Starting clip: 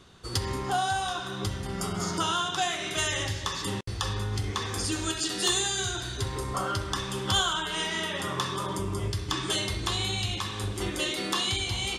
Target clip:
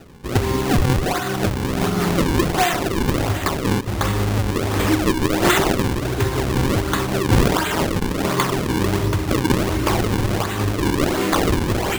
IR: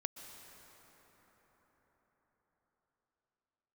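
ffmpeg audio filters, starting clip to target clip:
-filter_complex "[0:a]asplit=2[link_01][link_02];[link_02]equalizer=frequency=290:width=0.79:gain=10[link_03];[1:a]atrim=start_sample=2205[link_04];[link_03][link_04]afir=irnorm=-1:irlink=0,volume=-1.5dB[link_05];[link_01][link_05]amix=inputs=2:normalize=0,acrusher=samples=39:mix=1:aa=0.000001:lfo=1:lforange=62.4:lforate=1.4,volume=5dB"

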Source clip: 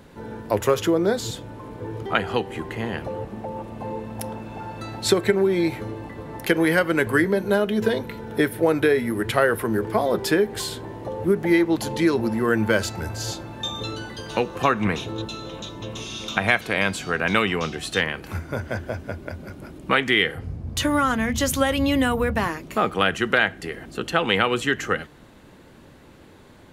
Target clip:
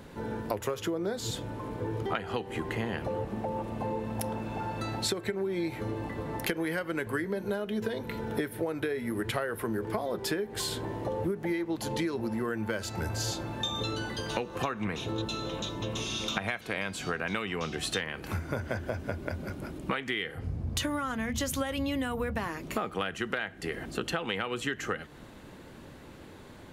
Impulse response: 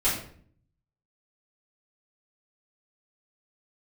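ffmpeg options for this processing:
-af "acompressor=threshold=-28dB:ratio=12"

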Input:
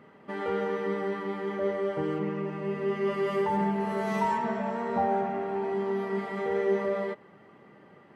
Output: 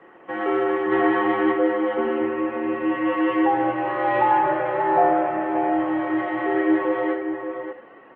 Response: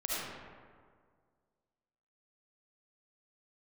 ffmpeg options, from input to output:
-filter_complex "[0:a]asplit=3[link_01][link_02][link_03];[link_01]afade=type=out:start_time=0.91:duration=0.02[link_04];[link_02]acontrast=57,afade=type=in:start_time=0.91:duration=0.02,afade=type=out:start_time=1.51:duration=0.02[link_05];[link_03]afade=type=in:start_time=1.51:duration=0.02[link_06];[link_04][link_05][link_06]amix=inputs=3:normalize=0,asplit=2[link_07][link_08];[1:a]atrim=start_sample=2205,afade=type=out:start_time=0.15:duration=0.01,atrim=end_sample=7056[link_09];[link_08][link_09]afir=irnorm=-1:irlink=0,volume=-7.5dB[link_10];[link_07][link_10]amix=inputs=2:normalize=0,highpass=frequency=390:width_type=q:width=0.5412,highpass=frequency=390:width_type=q:width=1.307,lowpass=frequency=3100:width_type=q:width=0.5176,lowpass=frequency=3100:width_type=q:width=0.7071,lowpass=frequency=3100:width_type=q:width=1.932,afreqshift=-76,asplit=2[link_11][link_12];[link_12]adelay=583.1,volume=-7dB,highshelf=frequency=4000:gain=-13.1[link_13];[link_11][link_13]amix=inputs=2:normalize=0,volume=6.5dB" -ar 48000 -c:a libopus -b:a 20k

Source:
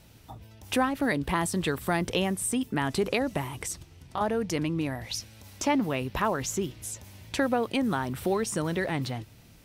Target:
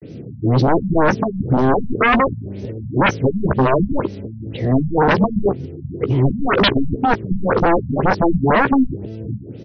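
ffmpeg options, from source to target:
ffmpeg -i in.wav -filter_complex "[0:a]areverse,highpass=frequency=97:width=0.5412,highpass=frequency=97:width=1.3066,lowshelf=frequency=640:width_type=q:width=3:gain=14,aeval=exprs='0.299*sin(PI/2*1.58*val(0)/0.299)':channel_layout=same,asplit=2[link_01][link_02];[link_02]adelay=15,volume=-10.5dB[link_03];[link_01][link_03]amix=inputs=2:normalize=0,afftfilt=real='re*lt(b*sr/1024,230*pow(6400/230,0.5+0.5*sin(2*PI*2*pts/sr)))':imag='im*lt(b*sr/1024,230*pow(6400/230,0.5+0.5*sin(2*PI*2*pts/sr)))':win_size=1024:overlap=0.75" out.wav

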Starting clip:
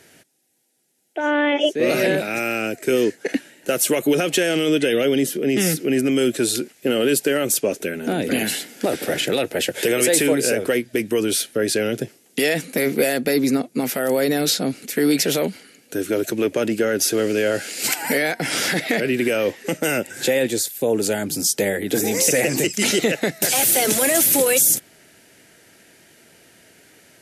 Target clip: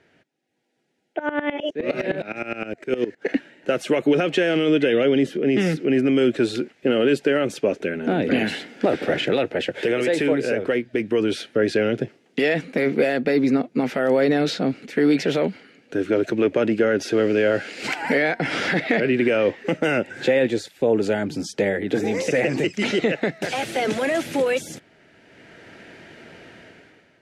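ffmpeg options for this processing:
ffmpeg -i in.wav -filter_complex "[0:a]dynaudnorm=framelen=110:gausssize=11:maxgain=16dB,lowpass=2700,asettb=1/sr,asplit=3[link_01][link_02][link_03];[link_01]atrim=end=1.194[link_04];[link_02]atrim=start=1.19:end=3.22,asetpts=PTS-STARTPTS,afade=type=in:duration=0.004:curve=qsin,afade=type=out:start_time=2.026:duration=0.004:curve=qsin,aeval=exprs='val(0)*pow(10,-18*if(lt(mod(-9.7*n/s,1),2*abs(-9.7)/1000),1-mod(-9.7*n/s,1)/(2*abs(-9.7)/1000),(mod(-9.7*n/s,1)-2*abs(-9.7)/1000)/(1-2*abs(-9.7)/1000))/20)':channel_layout=same[link_05];[link_03]atrim=start=3.216[link_06];[link_04][link_05]acrossfade=duration=0.004:curve1=hsin:curve2=qsin[link_07];[link_07][link_06]acrossfade=duration=0.004:curve1=qsin:curve2=hsin,volume=-6.5dB" out.wav

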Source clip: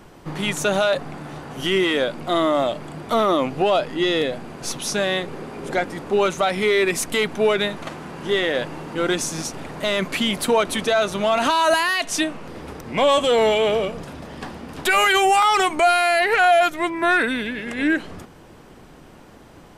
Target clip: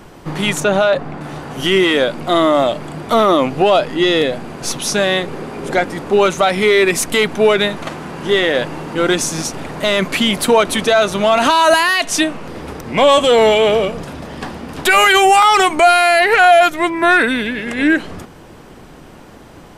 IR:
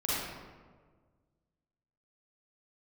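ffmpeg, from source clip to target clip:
-filter_complex "[0:a]asettb=1/sr,asplit=3[link_01][link_02][link_03];[link_01]atrim=end=0.604[link_04];[link_02]atrim=start=0.6:end=1.21,asetpts=PTS-STARTPTS,afade=type=in:duration=0.004:curve=qsin,afade=type=out:start_time=0.606:duration=0.004:curve=qsin,lowpass=frequency=2300:poles=1[link_05];[link_03]atrim=start=1.206[link_06];[link_04][link_05]acrossfade=duration=0.004:curve1=hsin:curve2=qsin[link_07];[link_07][link_06]acrossfade=duration=0.004:curve1=qsin:curve2=hsin,volume=6.5dB"

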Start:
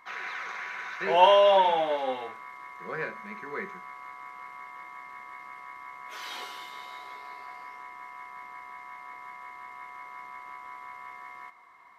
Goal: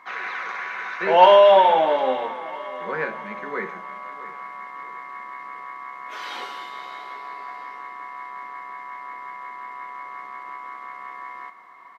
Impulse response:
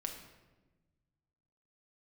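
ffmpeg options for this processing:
-filter_complex "[0:a]acontrast=66,highpass=190,aecho=1:1:656|1312|1968|2624:0.126|0.0554|0.0244|0.0107,asplit=2[link_01][link_02];[1:a]atrim=start_sample=2205,asetrate=66150,aresample=44100,lowshelf=frequency=130:gain=11[link_03];[link_02][link_03]afir=irnorm=-1:irlink=0,volume=-5dB[link_04];[link_01][link_04]amix=inputs=2:normalize=0,acrusher=bits=10:mix=0:aa=0.000001,lowpass=frequency=2600:poles=1,volume=-1dB"

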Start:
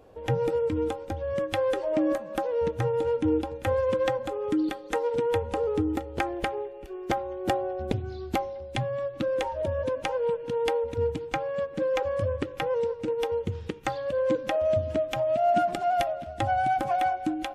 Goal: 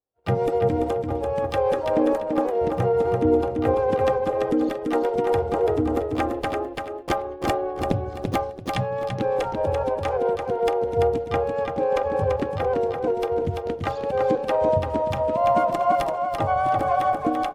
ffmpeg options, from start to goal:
ffmpeg -i in.wav -filter_complex "[0:a]agate=range=-43dB:threshold=-34dB:ratio=16:detection=peak,highshelf=frequency=7300:gain=4,asplit=3[link_01][link_02][link_03];[link_02]asetrate=35002,aresample=44100,atempo=1.25992,volume=-10dB[link_04];[link_03]asetrate=66075,aresample=44100,atempo=0.66742,volume=-8dB[link_05];[link_01][link_04][link_05]amix=inputs=3:normalize=0,asplit=2[link_06][link_07];[link_07]aecho=0:1:338|676|1014|1352:0.596|0.155|0.0403|0.0105[link_08];[link_06][link_08]amix=inputs=2:normalize=0,adynamicequalizer=threshold=0.00891:dfrequency=1600:dqfactor=0.7:tfrequency=1600:tqfactor=0.7:attack=5:release=100:ratio=0.375:range=3:mode=cutabove:tftype=highshelf,volume=2.5dB" out.wav

